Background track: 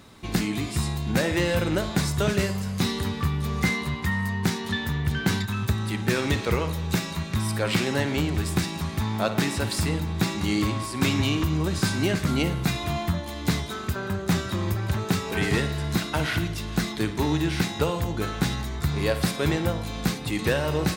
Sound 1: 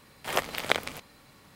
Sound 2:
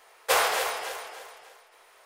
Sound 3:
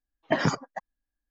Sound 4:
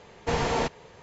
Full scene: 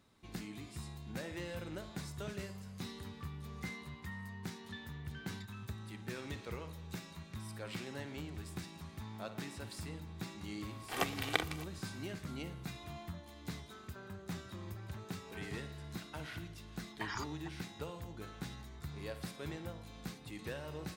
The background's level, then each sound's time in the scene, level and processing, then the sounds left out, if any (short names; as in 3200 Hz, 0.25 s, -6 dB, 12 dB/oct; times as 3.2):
background track -19.5 dB
10.64 add 1 -8.5 dB + comb 2.6 ms, depth 56%
16.69 add 3 -11 dB + elliptic band-stop 100–910 Hz
not used: 2, 4